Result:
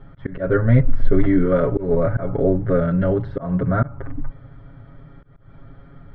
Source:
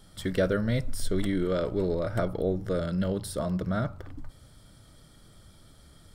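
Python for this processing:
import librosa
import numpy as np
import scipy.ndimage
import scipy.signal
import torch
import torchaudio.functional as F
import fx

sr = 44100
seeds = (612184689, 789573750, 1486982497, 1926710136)

y = scipy.signal.sosfilt(scipy.signal.butter(4, 2000.0, 'lowpass', fs=sr, output='sos'), x)
y = fx.low_shelf(y, sr, hz=220.0, db=3.5)
y = y + 0.97 * np.pad(y, (int(7.3 * sr / 1000.0), 0))[:len(y)]
y = fx.auto_swell(y, sr, attack_ms=178.0)
y = F.gain(torch.from_numpy(y), 7.0).numpy()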